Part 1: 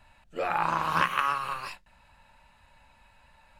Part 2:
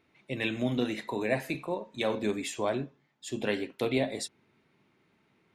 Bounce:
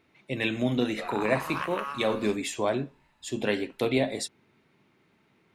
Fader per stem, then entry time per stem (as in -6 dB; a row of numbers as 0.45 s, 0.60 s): -8.5 dB, +3.0 dB; 0.60 s, 0.00 s